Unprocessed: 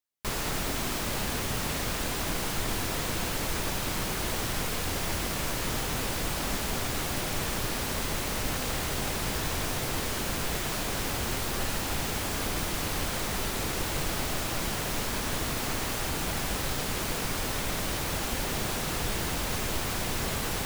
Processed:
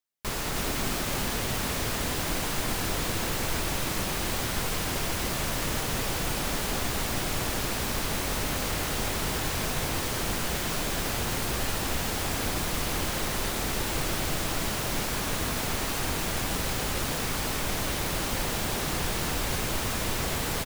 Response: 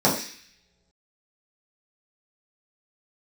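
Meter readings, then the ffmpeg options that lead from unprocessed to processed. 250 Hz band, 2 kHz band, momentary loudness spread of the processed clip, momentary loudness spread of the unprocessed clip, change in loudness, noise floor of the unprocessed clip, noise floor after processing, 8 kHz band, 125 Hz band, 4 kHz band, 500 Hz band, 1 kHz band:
+1.5 dB, +1.5 dB, 0 LU, 0 LU, +1.5 dB, −32 dBFS, −31 dBFS, +1.5 dB, +1.5 dB, +1.5 dB, +1.5 dB, +1.5 dB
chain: -af "aecho=1:1:315:0.631"

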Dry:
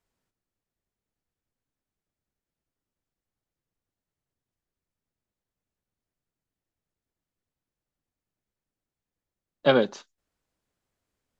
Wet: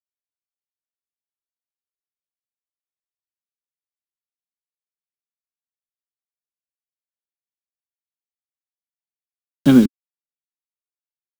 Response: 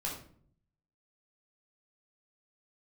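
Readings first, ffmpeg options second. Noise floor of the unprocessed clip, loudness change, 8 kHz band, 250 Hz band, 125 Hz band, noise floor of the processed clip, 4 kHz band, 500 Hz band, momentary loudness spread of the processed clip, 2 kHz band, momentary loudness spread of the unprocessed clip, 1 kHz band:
below −85 dBFS, +8.5 dB, can't be measured, +17.0 dB, +12.5 dB, below −85 dBFS, −1.0 dB, −3.5 dB, 8 LU, −2.0 dB, 7 LU, −4.0 dB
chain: -af "acrusher=bits=4:mix=0:aa=0.000001,lowshelf=frequency=380:width_type=q:width=3:gain=12,volume=-1.5dB"

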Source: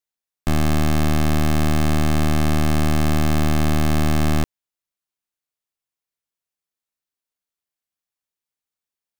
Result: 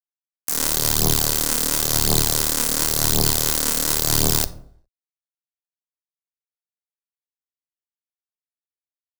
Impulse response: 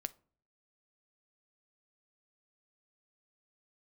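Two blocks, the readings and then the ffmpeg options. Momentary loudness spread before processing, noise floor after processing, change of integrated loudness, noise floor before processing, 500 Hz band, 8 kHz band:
2 LU, below −85 dBFS, +2.5 dB, below −85 dBFS, −2.0 dB, +15.5 dB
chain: -filter_complex "[0:a]agate=range=-33dB:threshold=-11dB:ratio=3:detection=peak,asplit=2[link_01][link_02];[link_02]highpass=frequency=720:poles=1,volume=24dB,asoftclip=type=tanh:threshold=-27dB[link_03];[link_01][link_03]amix=inputs=2:normalize=0,lowpass=frequency=4900:poles=1,volume=-6dB,aexciter=amount=11.7:drive=4.2:freq=3300,lowshelf=frequency=170:gain=7.5,afreqshift=18,aphaser=in_gain=1:out_gain=1:delay=4.5:decay=0.55:speed=0.94:type=triangular,acrusher=bits=2:mix=0:aa=0.5,highshelf=frequency=7100:gain=10,asplit=2[link_04][link_05];[1:a]atrim=start_sample=2205[link_06];[link_05][link_06]afir=irnorm=-1:irlink=0,volume=14dB[link_07];[link_04][link_07]amix=inputs=2:normalize=0,alimiter=limit=-3.5dB:level=0:latency=1:release=171,volume=2dB"

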